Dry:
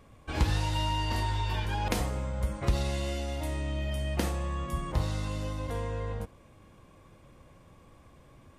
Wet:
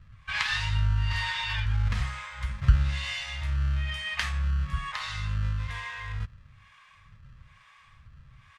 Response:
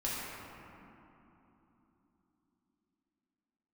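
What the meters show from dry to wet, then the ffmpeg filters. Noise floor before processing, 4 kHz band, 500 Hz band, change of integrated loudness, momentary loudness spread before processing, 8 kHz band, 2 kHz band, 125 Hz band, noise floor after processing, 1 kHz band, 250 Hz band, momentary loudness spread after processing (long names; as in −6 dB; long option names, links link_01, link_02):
−57 dBFS, +5.0 dB, −18.0 dB, +2.5 dB, 5 LU, −3.0 dB, +8.5 dB, +3.0 dB, −57 dBFS, −3.0 dB, −8.0 dB, 10 LU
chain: -filter_complex "[0:a]bandreject=frequency=1400:width=7,acrossover=split=590[link_01][link_02];[link_01]aeval=exprs='val(0)*(1-1/2+1/2*cos(2*PI*1.1*n/s))':channel_layout=same[link_03];[link_02]aeval=exprs='val(0)*(1-1/2-1/2*cos(2*PI*1.1*n/s))':channel_layout=same[link_04];[link_03][link_04]amix=inputs=2:normalize=0,asplit=2[link_05][link_06];[link_06]acrusher=samples=30:mix=1:aa=0.000001,volume=-9dB[link_07];[link_05][link_07]amix=inputs=2:normalize=0,firequalizer=gain_entry='entry(120,0);entry(310,-28);entry(1300,9);entry(13000,-18)':delay=0.05:min_phase=1,volume=5.5dB"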